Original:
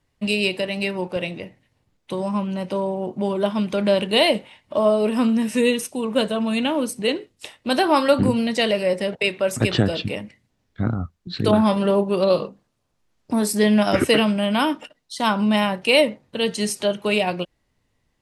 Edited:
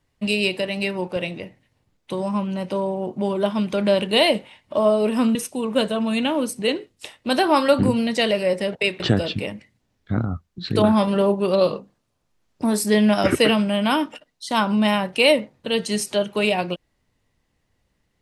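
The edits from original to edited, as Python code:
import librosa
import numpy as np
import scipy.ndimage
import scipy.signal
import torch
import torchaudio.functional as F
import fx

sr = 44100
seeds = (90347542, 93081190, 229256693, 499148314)

y = fx.edit(x, sr, fx.cut(start_s=5.35, length_s=0.4),
    fx.cut(start_s=9.4, length_s=0.29), tone=tone)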